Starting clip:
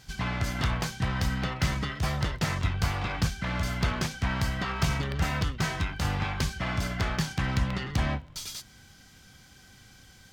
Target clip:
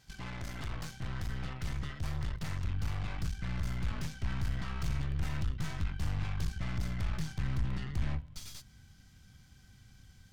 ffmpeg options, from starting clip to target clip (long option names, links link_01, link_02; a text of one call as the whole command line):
ffmpeg -i in.wav -af "aeval=exprs='(tanh(44.7*val(0)+0.75)-tanh(0.75))/44.7':channel_layout=same,asubboost=boost=3.5:cutoff=210,volume=-6dB" out.wav